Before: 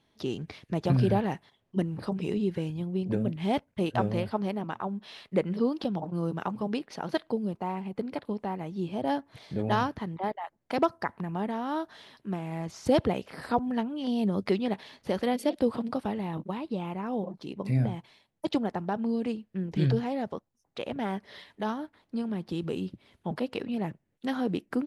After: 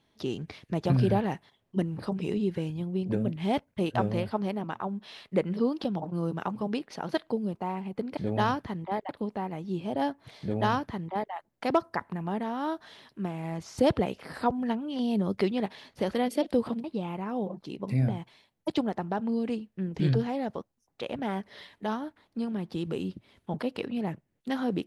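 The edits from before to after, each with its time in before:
9.49–10.41 s: copy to 8.17 s
15.92–16.61 s: delete

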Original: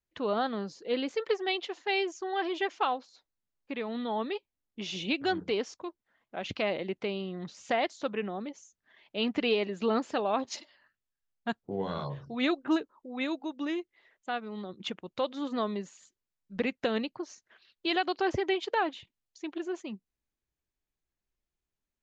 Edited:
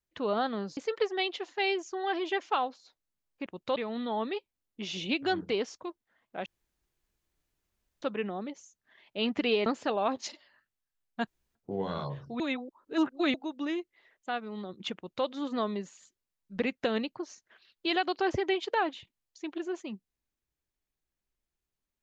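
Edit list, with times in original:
0.77–1.06 s: delete
6.45–8.01 s: room tone
9.65–9.94 s: delete
11.55 s: insert room tone 0.28 s
12.40–13.34 s: reverse
14.96–15.26 s: copy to 3.75 s

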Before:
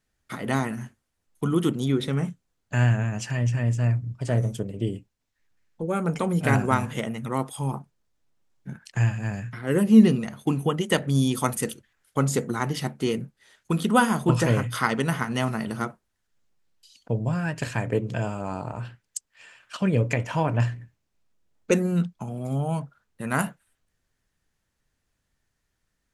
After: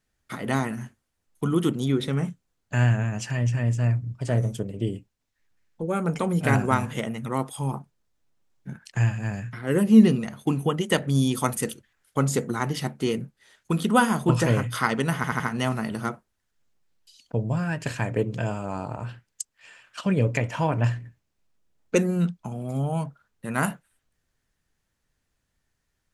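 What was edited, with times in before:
15.16 s: stutter 0.08 s, 4 plays

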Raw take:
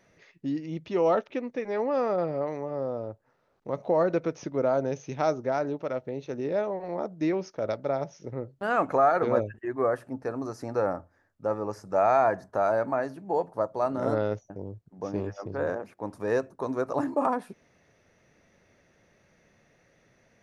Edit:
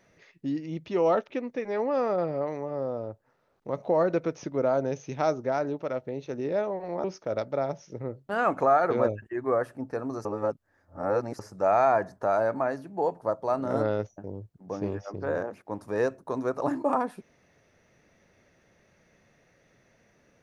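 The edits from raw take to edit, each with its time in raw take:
7.04–7.36 s: delete
10.57–11.71 s: reverse

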